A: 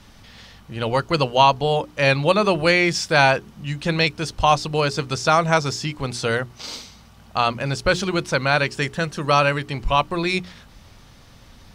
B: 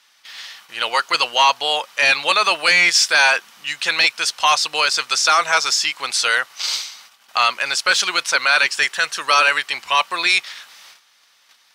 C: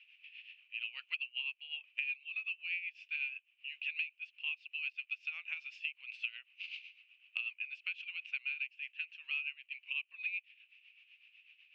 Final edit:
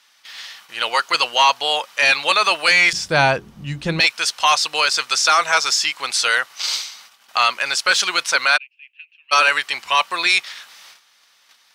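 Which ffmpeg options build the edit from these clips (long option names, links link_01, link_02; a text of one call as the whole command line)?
ffmpeg -i take0.wav -i take1.wav -i take2.wav -filter_complex "[1:a]asplit=3[link_01][link_02][link_03];[link_01]atrim=end=2.932[link_04];[0:a]atrim=start=2.928:end=4.002[link_05];[link_02]atrim=start=3.998:end=8.58[link_06];[2:a]atrim=start=8.56:end=9.33[link_07];[link_03]atrim=start=9.31[link_08];[link_04][link_05]acrossfade=duration=0.004:curve1=hsin:curve2=hsin[link_09];[link_09][link_06]acrossfade=duration=0.004:curve1=hsin:curve2=hsin[link_10];[link_10][link_07]acrossfade=duration=0.02:curve1=tri:curve2=tri[link_11];[link_11][link_08]acrossfade=duration=0.02:curve1=tri:curve2=tri" out.wav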